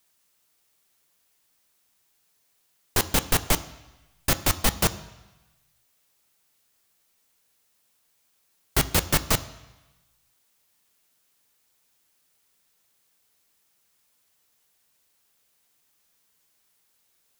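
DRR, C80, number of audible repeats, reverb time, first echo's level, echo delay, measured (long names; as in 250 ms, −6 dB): 11.0 dB, 18.0 dB, no echo audible, 1.1 s, no echo audible, no echo audible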